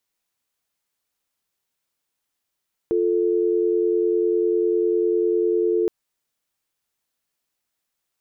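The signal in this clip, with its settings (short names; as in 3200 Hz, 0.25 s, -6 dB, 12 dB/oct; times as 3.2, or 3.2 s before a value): call progress tone dial tone, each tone -20 dBFS 2.97 s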